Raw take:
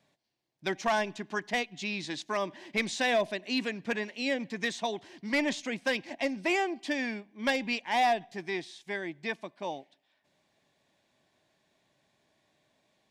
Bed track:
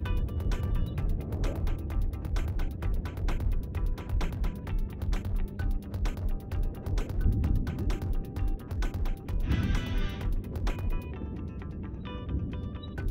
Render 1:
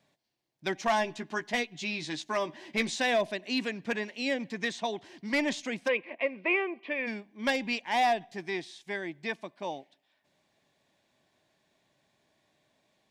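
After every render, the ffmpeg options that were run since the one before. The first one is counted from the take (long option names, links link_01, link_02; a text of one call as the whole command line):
ffmpeg -i in.wav -filter_complex "[0:a]asettb=1/sr,asplit=3[link_01][link_02][link_03];[link_01]atrim=end=0.884[link_04];[link_02]atrim=start=0.88:end=2.96,asetpts=PTS-STARTPTS,afade=type=in:duration=0.004:curve=qsin,afade=type=out:start_time=2.076:duration=0.004:curve=qsin,asplit=2[link_05][link_06];[link_06]adelay=13,volume=-7dB[link_07];[link_05][link_07]amix=inputs=2:normalize=0,atrim=end_sample=91728[link_08];[link_03]atrim=start=2.956[link_09];[link_04][link_08]acrossfade=duration=0.004:curve1=hsin:curve2=qsin[link_10];[link_10][link_09]acrossfade=duration=0.004:curve1=qsin:curve2=hsin,asettb=1/sr,asplit=3[link_11][link_12][link_13];[link_11]atrim=end=4.564[link_14];[link_12]atrim=start=4.56:end=5.04,asetpts=PTS-STARTPTS,afade=type=in:duration=0.004:curve=qsin,afade=type=out:start_time=0.476:duration=0.004:curve=qsin,highshelf=frequency=9300:gain=-8[link_15];[link_13]atrim=start=5.036[link_16];[link_14][link_15]acrossfade=duration=0.004:curve1=hsin:curve2=qsin[link_17];[link_17][link_16]acrossfade=duration=0.004:curve1=qsin:curve2=hsin,asplit=3[link_18][link_19][link_20];[link_18]afade=type=out:start_time=5.87:duration=0.02[link_21];[link_19]highpass=270,equalizer=frequency=280:width_type=q:width=4:gain=-7,equalizer=frequency=470:width_type=q:width=4:gain=9,equalizer=frequency=790:width_type=q:width=4:gain=-10,equalizer=frequency=1100:width_type=q:width=4:gain=6,equalizer=frequency=1600:width_type=q:width=4:gain=-6,equalizer=frequency=2400:width_type=q:width=4:gain=8,lowpass=frequency=2600:width=0.5412,lowpass=frequency=2600:width=1.3066,afade=type=in:start_time=5.87:duration=0.02,afade=type=out:start_time=7.06:duration=0.02[link_22];[link_20]afade=type=in:start_time=7.06:duration=0.02[link_23];[link_21][link_22][link_23]amix=inputs=3:normalize=0" out.wav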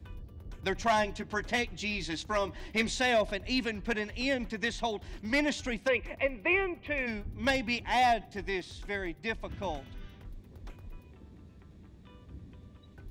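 ffmpeg -i in.wav -i bed.wav -filter_complex "[1:a]volume=-15.5dB[link_01];[0:a][link_01]amix=inputs=2:normalize=0" out.wav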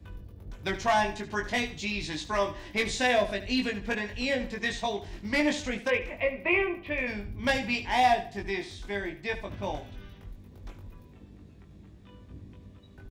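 ffmpeg -i in.wav -filter_complex "[0:a]asplit=2[link_01][link_02];[link_02]adelay=20,volume=-3dB[link_03];[link_01][link_03]amix=inputs=2:normalize=0,aecho=1:1:74|148|222:0.224|0.0694|0.0215" out.wav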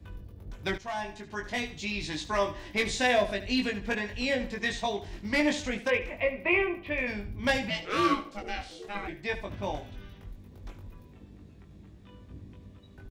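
ffmpeg -i in.wav -filter_complex "[0:a]asplit=3[link_01][link_02][link_03];[link_01]afade=type=out:start_time=7.69:duration=0.02[link_04];[link_02]aeval=exprs='val(0)*sin(2*PI*410*n/s)':channel_layout=same,afade=type=in:start_time=7.69:duration=0.02,afade=type=out:start_time=9.07:duration=0.02[link_05];[link_03]afade=type=in:start_time=9.07:duration=0.02[link_06];[link_04][link_05][link_06]amix=inputs=3:normalize=0,asplit=2[link_07][link_08];[link_07]atrim=end=0.78,asetpts=PTS-STARTPTS,afade=type=out:start_time=0.776:duration=0.004:curve=hsin:silence=0.211349[link_09];[link_08]atrim=start=0.78,asetpts=PTS-STARTPTS,afade=type=in:duration=1.36:silence=0.211349[link_10];[link_09][link_10]concat=n=2:v=0:a=1" out.wav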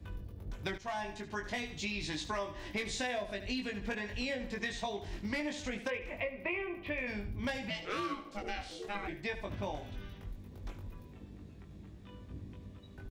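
ffmpeg -i in.wav -af "acompressor=threshold=-34dB:ratio=6" out.wav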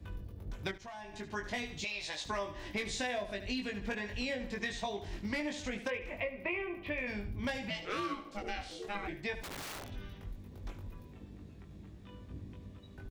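ffmpeg -i in.wav -filter_complex "[0:a]asettb=1/sr,asplit=3[link_01][link_02][link_03];[link_01]atrim=end=0.714[link_04];[link_02]atrim=start=0.71:end=1.14,asetpts=PTS-STARTPTS,afade=type=in:duration=0.004:curve=qsin,afade=type=out:start_time=0.426:duration=0.004:curve=qsin,acompressor=threshold=-47dB:ratio=2.5:attack=3.2:release=140:knee=1:detection=peak[link_05];[link_03]atrim=start=1.136[link_06];[link_04][link_05]acrossfade=duration=0.004:curve1=hsin:curve2=qsin[link_07];[link_07][link_06]acrossfade=duration=0.004:curve1=qsin:curve2=hsin,asettb=1/sr,asplit=3[link_08][link_09][link_10];[link_08]atrim=end=1.844[link_11];[link_09]atrim=start=1.84:end=2.26,asetpts=PTS-STARTPTS,afade=type=in:duration=0.004:curve=qsin,afade=type=out:start_time=0.416:duration=0.004:curve=qsin,lowshelf=frequency=400:width_type=q:width=3:gain=-13[link_12];[link_10]atrim=start=2.256[link_13];[link_11][link_12]acrossfade=duration=0.004:curve1=hsin:curve2=qsin[link_14];[link_14][link_13]acrossfade=duration=0.004:curve1=qsin:curve2=hsin,asplit=3[link_15][link_16][link_17];[link_15]afade=type=out:start_time=9.42:duration=0.02[link_18];[link_16]aeval=exprs='(mod(84.1*val(0)+1,2)-1)/84.1':channel_layout=same,afade=type=in:start_time=9.42:duration=0.02,afade=type=out:start_time=9.88:duration=0.02[link_19];[link_17]afade=type=in:start_time=9.88:duration=0.02[link_20];[link_18][link_19][link_20]amix=inputs=3:normalize=0" out.wav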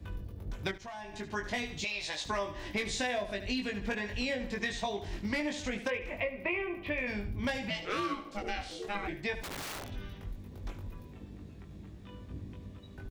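ffmpeg -i in.wav -af "volume=3dB" out.wav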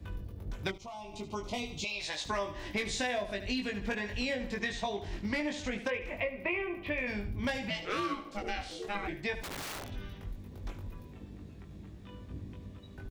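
ffmpeg -i in.wav -filter_complex "[0:a]asettb=1/sr,asplit=3[link_01][link_02][link_03];[link_01]atrim=end=0.704[link_04];[link_02]atrim=start=0.7:end=2,asetpts=PTS-STARTPTS,afade=type=in:duration=0.004:curve=qsin,afade=type=out:start_time=1.296:duration=0.004:curve=qsin,asuperstop=centerf=1700:order=4:qfactor=1.6[link_05];[link_03]atrim=start=1.996[link_06];[link_04][link_05]acrossfade=duration=0.004:curve1=hsin:curve2=qsin[link_07];[link_07][link_06]acrossfade=duration=0.004:curve1=qsin:curve2=hsin,asettb=1/sr,asplit=3[link_08][link_09][link_10];[link_08]atrim=end=4.594[link_11];[link_09]atrim=start=4.59:end=5.98,asetpts=PTS-STARTPTS,afade=type=in:duration=0.004:curve=qsin,afade=type=out:start_time=1.386:duration=0.004:curve=qsin,highshelf=frequency=8200:gain=-6[link_12];[link_10]atrim=start=5.976[link_13];[link_11][link_12]acrossfade=duration=0.004:curve1=hsin:curve2=qsin[link_14];[link_14][link_13]acrossfade=duration=0.004:curve1=qsin:curve2=hsin" out.wav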